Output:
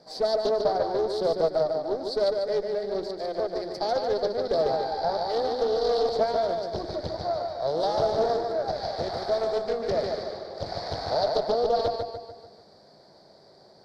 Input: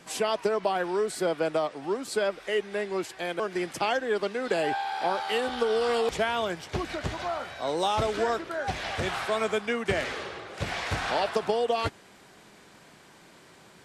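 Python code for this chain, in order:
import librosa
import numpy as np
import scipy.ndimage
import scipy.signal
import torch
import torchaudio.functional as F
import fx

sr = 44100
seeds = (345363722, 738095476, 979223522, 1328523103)

y = fx.hum_notches(x, sr, base_hz=60, count=6)
y = fx.echo_feedback(y, sr, ms=147, feedback_pct=50, wet_db=-4.5)
y = fx.tube_stage(y, sr, drive_db=22.0, bias=0.75)
y = fx.curve_eq(y, sr, hz=(300.0, 650.0, 1100.0, 2000.0, 2800.0, 4600.0, 6800.0), db=(0, 10, -6, -10, -24, 12, -14))
y = fx.doppler_dist(y, sr, depth_ms=0.33)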